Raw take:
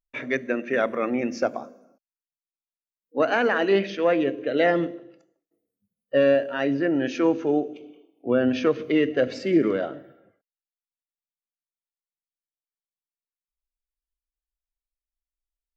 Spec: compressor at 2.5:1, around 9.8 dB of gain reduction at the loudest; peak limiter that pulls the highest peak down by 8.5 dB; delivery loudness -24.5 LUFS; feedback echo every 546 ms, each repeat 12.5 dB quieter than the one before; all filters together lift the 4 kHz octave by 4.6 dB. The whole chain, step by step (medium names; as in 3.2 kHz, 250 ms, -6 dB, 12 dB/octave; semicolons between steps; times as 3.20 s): peaking EQ 4 kHz +7 dB; compression 2.5:1, threshold -30 dBFS; peak limiter -25 dBFS; feedback delay 546 ms, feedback 24%, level -12.5 dB; trim +10.5 dB